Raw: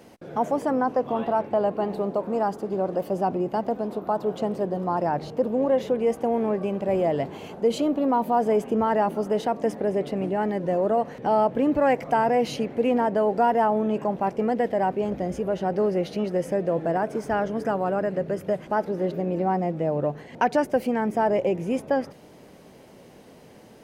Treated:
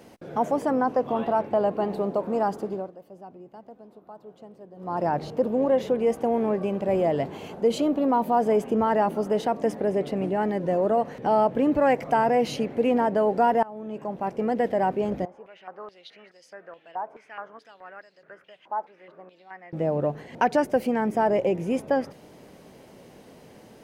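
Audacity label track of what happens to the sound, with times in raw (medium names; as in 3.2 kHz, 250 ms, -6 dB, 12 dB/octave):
2.630000	5.050000	dip -19.5 dB, fades 0.29 s
13.630000	14.640000	fade in linear, from -23.5 dB
15.250000	19.730000	step-sequenced band-pass 4.7 Hz 930–4700 Hz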